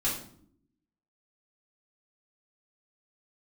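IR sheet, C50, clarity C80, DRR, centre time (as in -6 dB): 5.5 dB, 10.0 dB, -8.5 dB, 35 ms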